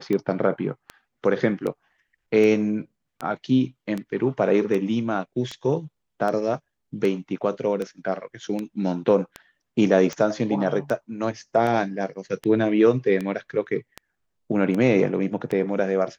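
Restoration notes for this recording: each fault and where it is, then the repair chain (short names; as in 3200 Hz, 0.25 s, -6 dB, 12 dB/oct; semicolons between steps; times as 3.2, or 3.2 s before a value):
tick 78 rpm -16 dBFS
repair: de-click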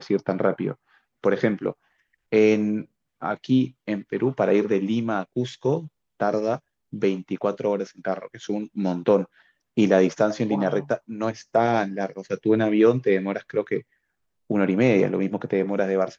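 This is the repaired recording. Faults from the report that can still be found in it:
none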